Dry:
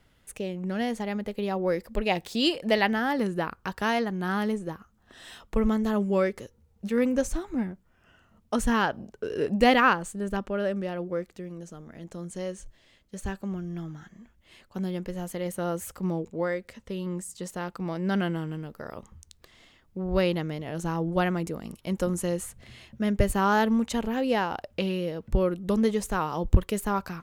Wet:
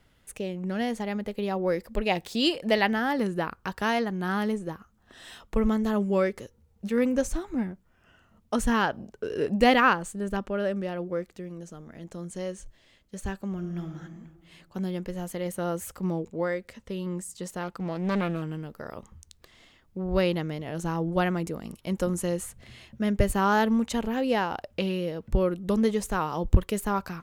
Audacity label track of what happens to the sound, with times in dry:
13.530000	13.940000	reverb throw, RT60 1.8 s, DRR 5 dB
17.630000	18.420000	loudspeaker Doppler distortion depth 0.52 ms

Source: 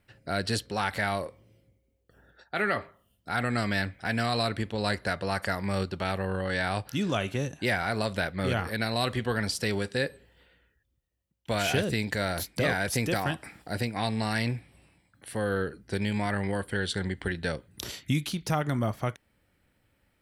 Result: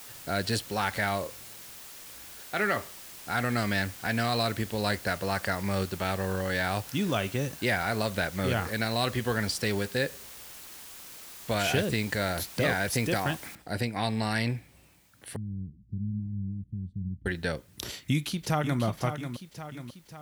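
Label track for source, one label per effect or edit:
13.550000	13.550000	noise floor step -46 dB -65 dB
15.360000	17.260000	inverse Chebyshev low-pass stop band from 510 Hz, stop band 50 dB
17.890000	18.820000	echo throw 540 ms, feedback 55%, level -8.5 dB

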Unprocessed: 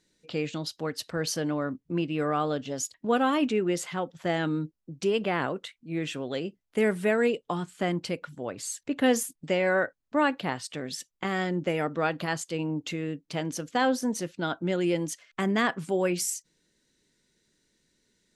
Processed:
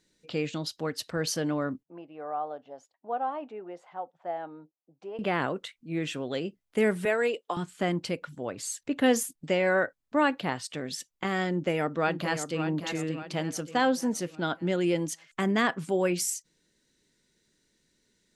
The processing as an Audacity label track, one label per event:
1.830000	5.190000	band-pass filter 760 Hz, Q 3.5
7.050000	7.570000	high-pass 410 Hz
11.490000	12.640000	echo throw 580 ms, feedback 45%, level -8.5 dB

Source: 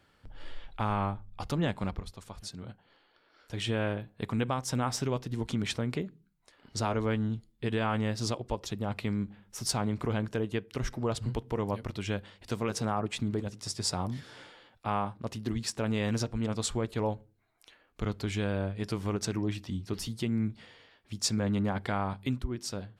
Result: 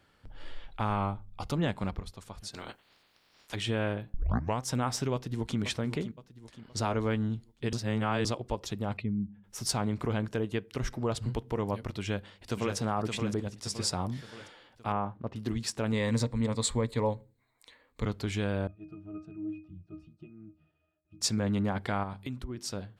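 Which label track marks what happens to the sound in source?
0.960000	1.560000	band-stop 1.7 kHz, Q 5.9
2.530000	3.540000	spectral peaks clipped ceiling under each frame's peak by 26 dB
4.140000	4.140000	tape start 0.46 s
5.130000	5.590000	echo throw 520 ms, feedback 45%, level -10.5 dB
7.730000	8.250000	reverse
8.970000	9.440000	spectral contrast enhancement exponent 1.8
12.000000	12.760000	echo throw 570 ms, feedback 50%, level -5.5 dB
14.920000	15.360000	Bessel low-pass 1.5 kHz
15.920000	18.060000	rippled EQ curve crests per octave 1, crest to trough 9 dB
18.670000	21.210000	pitch-class resonator D#, decay 0.23 s
22.030000	22.570000	compression 4:1, threshold -33 dBFS

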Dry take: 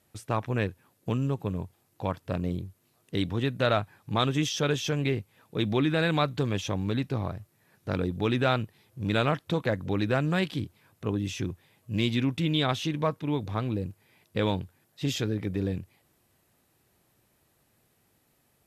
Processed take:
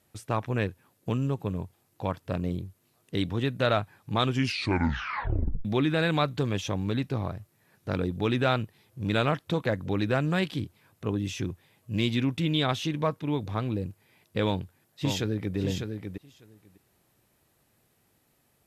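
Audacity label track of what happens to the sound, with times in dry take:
4.230000	4.230000	tape stop 1.42 s
14.440000	15.570000	echo throw 600 ms, feedback 10%, level -6 dB

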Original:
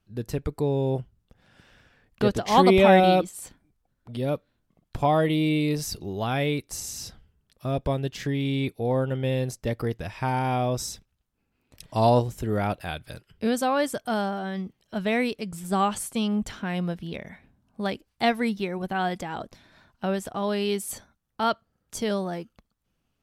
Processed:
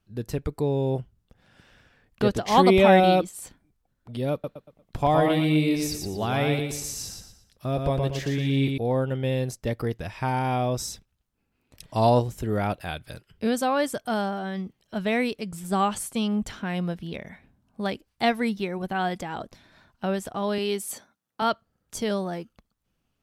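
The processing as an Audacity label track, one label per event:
4.320000	8.780000	feedback delay 117 ms, feedback 34%, level -4 dB
20.580000	21.420000	high-pass 200 Hz

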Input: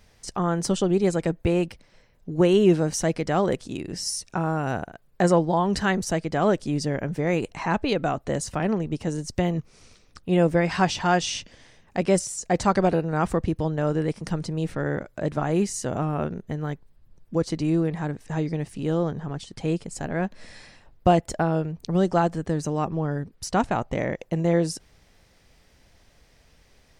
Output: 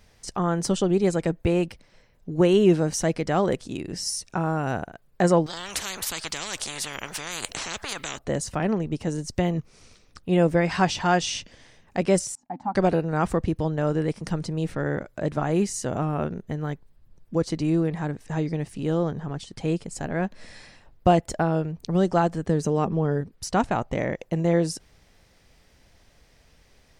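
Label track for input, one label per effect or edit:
5.460000	8.190000	spectrum-flattening compressor 10:1
12.350000	12.750000	two resonant band-passes 460 Hz, apart 1.7 oct
22.490000	23.210000	small resonant body resonances 210/430/3200 Hz, height 8 dB

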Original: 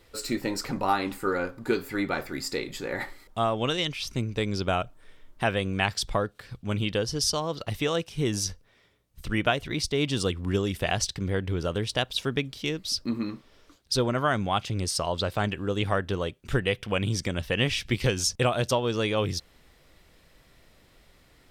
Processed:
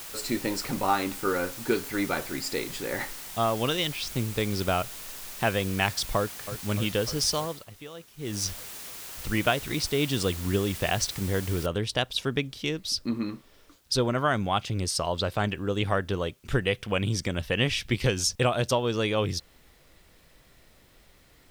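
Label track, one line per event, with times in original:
6.170000	6.640000	echo throw 300 ms, feedback 75%, level -10.5 dB
7.390000	8.450000	dip -16 dB, fades 0.27 s
11.660000	11.660000	noise floor step -41 dB -67 dB

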